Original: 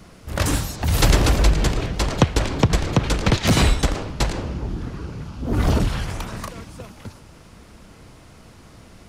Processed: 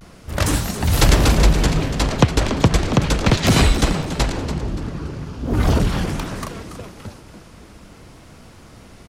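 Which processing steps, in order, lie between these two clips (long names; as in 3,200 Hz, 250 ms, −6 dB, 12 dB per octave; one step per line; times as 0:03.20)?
echo with shifted repeats 281 ms, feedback 35%, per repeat +110 Hz, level −11 dB
pitch vibrato 0.39 Hz 39 cents
level +2 dB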